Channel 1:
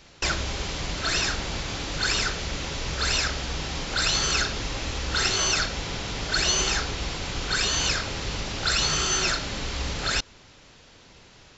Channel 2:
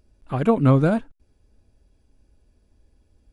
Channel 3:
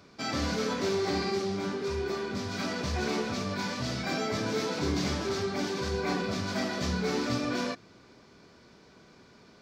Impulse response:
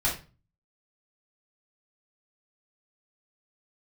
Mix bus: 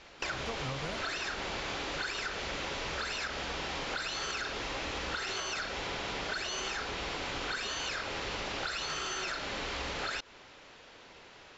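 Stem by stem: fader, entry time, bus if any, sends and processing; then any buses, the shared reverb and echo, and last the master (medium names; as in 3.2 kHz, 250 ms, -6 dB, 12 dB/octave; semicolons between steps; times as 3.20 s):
+1.5 dB, 0.00 s, no send, peak limiter -18 dBFS, peak gain reduction 8 dB; tone controls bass -13 dB, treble -10 dB
-11.5 dB, 0.00 s, no send, peaking EQ 250 Hz -14 dB 1.5 oct
-19.5 dB, 0.00 s, no send, none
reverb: none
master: compression, threshold -33 dBFS, peak gain reduction 8 dB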